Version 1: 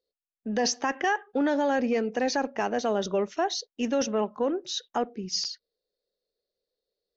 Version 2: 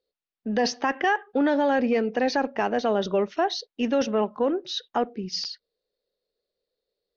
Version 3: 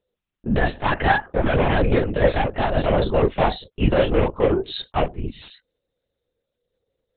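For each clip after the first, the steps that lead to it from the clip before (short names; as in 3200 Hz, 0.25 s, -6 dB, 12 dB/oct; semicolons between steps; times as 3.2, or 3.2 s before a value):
LPF 4800 Hz 24 dB/oct; gain +3 dB
wavefolder -16.5 dBFS; chorus voices 6, 1.2 Hz, delay 30 ms, depth 3 ms; LPC vocoder at 8 kHz whisper; gain +8.5 dB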